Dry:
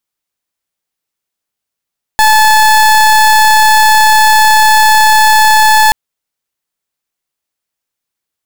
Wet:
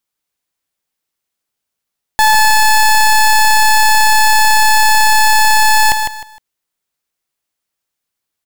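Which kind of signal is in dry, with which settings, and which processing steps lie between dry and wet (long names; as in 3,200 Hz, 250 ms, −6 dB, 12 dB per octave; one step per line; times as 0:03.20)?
pulse wave 866 Hz, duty 30% −6 dBFS 3.73 s
hard clipping −8.5 dBFS
on a send: repeating echo 154 ms, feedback 26%, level −6.5 dB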